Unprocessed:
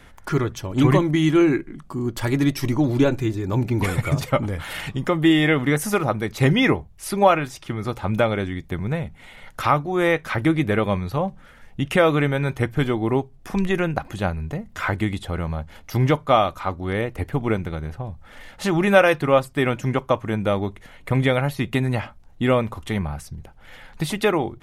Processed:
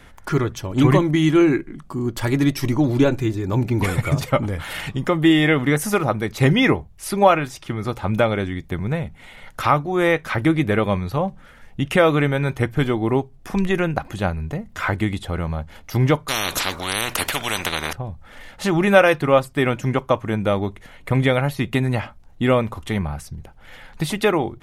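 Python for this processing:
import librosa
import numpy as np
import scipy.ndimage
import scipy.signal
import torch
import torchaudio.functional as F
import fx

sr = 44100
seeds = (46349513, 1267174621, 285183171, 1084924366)

y = fx.spectral_comp(x, sr, ratio=10.0, at=(16.28, 17.93))
y = y * 10.0 ** (1.5 / 20.0)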